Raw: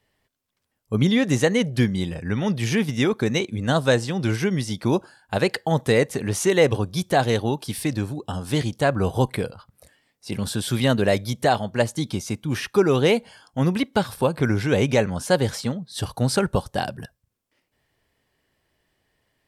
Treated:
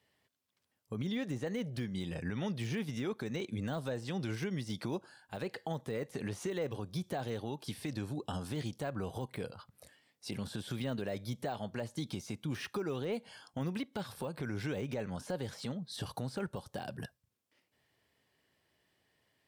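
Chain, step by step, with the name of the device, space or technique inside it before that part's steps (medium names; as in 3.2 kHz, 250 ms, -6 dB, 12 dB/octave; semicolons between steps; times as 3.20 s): broadcast voice chain (high-pass 90 Hz; de-esser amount 85%; compression 5:1, threshold -28 dBFS, peak gain reduction 13.5 dB; peaking EQ 3.7 kHz +2.5 dB 1.4 oct; peak limiter -22.5 dBFS, peak gain reduction 10 dB); trim -5 dB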